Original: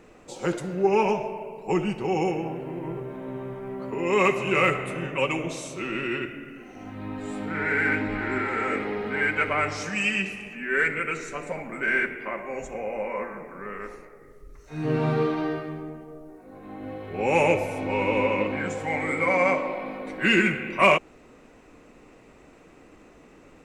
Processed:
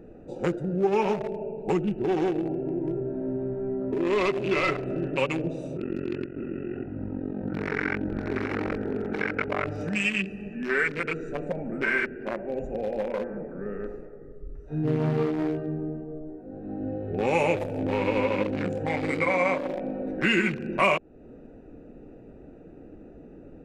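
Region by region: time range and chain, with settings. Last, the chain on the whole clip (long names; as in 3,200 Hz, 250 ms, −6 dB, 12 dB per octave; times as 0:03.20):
0:01.92–0:05.16: hard clipping −19 dBFS + high-frequency loss of the air 77 metres + comb filter 3 ms, depth 43%
0:05.77–0:09.67: low-pass filter 2,600 Hz + amplitude modulation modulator 45 Hz, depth 85% + single-tap delay 591 ms −4.5 dB
whole clip: adaptive Wiener filter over 41 samples; downward compressor 2 to 1, threshold −35 dBFS; level +7.5 dB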